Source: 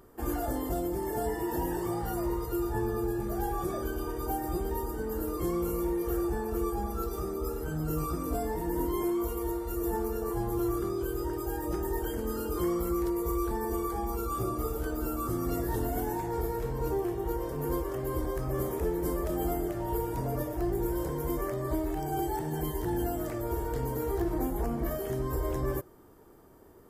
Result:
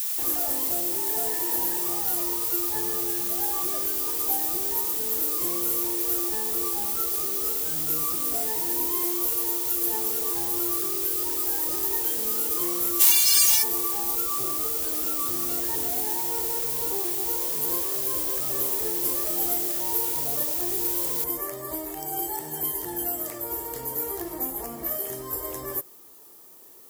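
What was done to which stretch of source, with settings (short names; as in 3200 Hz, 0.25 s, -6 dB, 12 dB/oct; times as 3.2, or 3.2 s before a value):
12.99–13.62 spectral whitening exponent 0.1
14.23–17.19 high shelf 11000 Hz -10.5 dB
21.24 noise floor step -44 dB -67 dB
whole clip: RIAA curve recording; notch 1500 Hz, Q 8.9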